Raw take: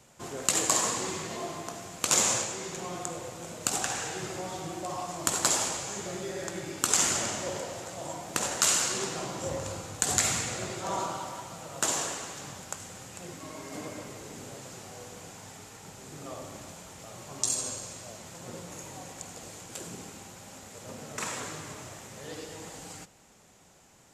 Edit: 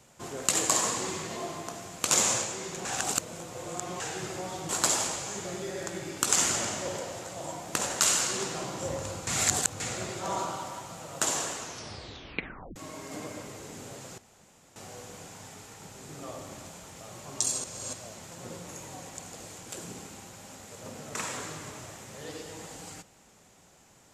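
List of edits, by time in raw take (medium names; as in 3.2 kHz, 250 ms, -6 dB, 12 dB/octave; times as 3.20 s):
2.85–4.00 s: reverse
4.69–5.30 s: delete
9.88–10.41 s: reverse
12.20 s: tape stop 1.17 s
14.79 s: insert room tone 0.58 s
17.67–17.96 s: reverse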